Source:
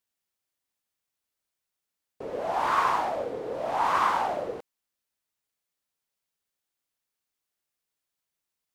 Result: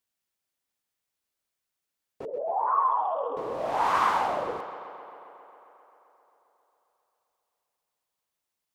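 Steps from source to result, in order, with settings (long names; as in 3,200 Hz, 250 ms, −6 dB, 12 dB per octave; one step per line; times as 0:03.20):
0:02.25–0:03.37: expanding power law on the bin magnitudes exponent 2.5
tape delay 133 ms, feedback 81%, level −11.5 dB, low-pass 5,600 Hz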